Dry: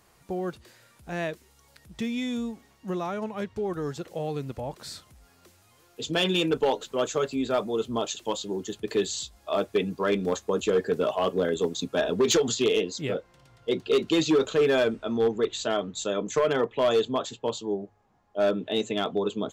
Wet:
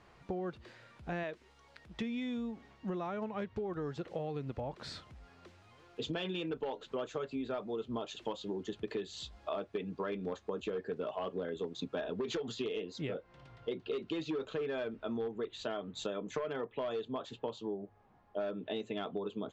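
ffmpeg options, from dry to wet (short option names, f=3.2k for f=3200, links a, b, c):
-filter_complex "[0:a]asettb=1/sr,asplit=3[a][b][c];[a]atrim=end=1.234[d];[b]atrim=start=1.23:end=2.02,asetpts=PTS-STARTPTS,afade=t=in:d=0.004:c=qsin,afade=t=out:st=0.786:d=0.004:c=qsin,equalizer=f=110:w=0.55:g=-8[e];[c]atrim=start=2.016[f];[d][e]acrossfade=d=0.004:c1=hsin:c2=qsin[g];[g][f]acrossfade=d=0.004:c1=qsin:c2=hsin,lowpass=3.3k,acompressor=threshold=-36dB:ratio=8,volume=1dB"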